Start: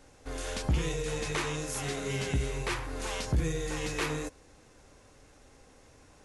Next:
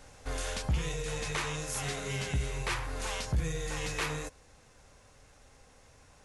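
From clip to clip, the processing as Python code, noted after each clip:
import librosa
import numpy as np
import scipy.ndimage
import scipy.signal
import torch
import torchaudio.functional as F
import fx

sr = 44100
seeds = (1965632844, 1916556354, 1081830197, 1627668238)

y = fx.peak_eq(x, sr, hz=320.0, db=-8.5, octaves=0.89)
y = fx.rider(y, sr, range_db=5, speed_s=0.5)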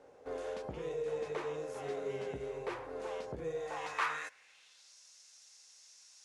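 y = fx.low_shelf(x, sr, hz=340.0, db=-7.0)
y = fx.filter_sweep_bandpass(y, sr, from_hz=430.0, to_hz=5400.0, start_s=3.42, end_s=4.96, q=2.2)
y = fx.high_shelf(y, sr, hz=5100.0, db=6.0)
y = y * 10.0 ** (7.0 / 20.0)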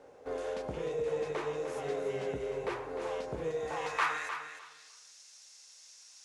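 y = fx.echo_feedback(x, sr, ms=304, feedback_pct=20, wet_db=-9)
y = y * 10.0 ** (3.5 / 20.0)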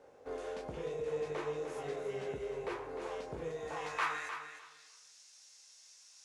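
y = fx.doubler(x, sr, ms=20.0, db=-7.0)
y = y * 10.0 ** (-4.5 / 20.0)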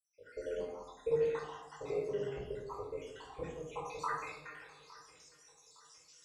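y = fx.spec_dropout(x, sr, seeds[0], share_pct=76)
y = fx.echo_feedback(y, sr, ms=861, feedback_pct=40, wet_db=-20.0)
y = fx.room_shoebox(y, sr, seeds[1], volume_m3=2300.0, walls='furnished', distance_m=4.8)
y = y * 10.0 ** (-1.0 / 20.0)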